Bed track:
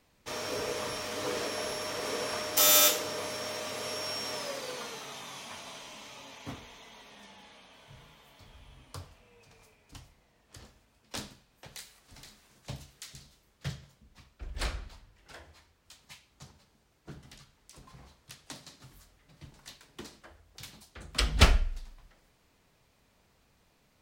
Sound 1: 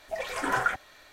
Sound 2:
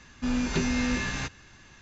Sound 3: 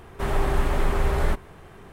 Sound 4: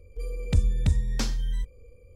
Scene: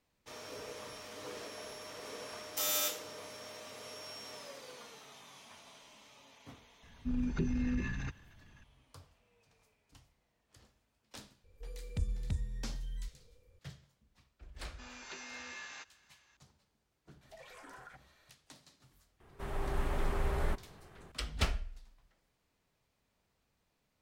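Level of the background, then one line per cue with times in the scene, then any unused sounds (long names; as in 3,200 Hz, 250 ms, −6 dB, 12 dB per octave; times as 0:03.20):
bed track −11.5 dB
0:06.83: mix in 2 −6 dB + spectral envelope exaggerated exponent 2
0:11.44: mix in 4 −13 dB
0:14.56: mix in 2 −13.5 dB + high-pass filter 670 Hz
0:17.21: mix in 1 −14 dB + downward compressor, threshold −36 dBFS
0:19.20: mix in 3 −15.5 dB + automatic gain control gain up to 5.5 dB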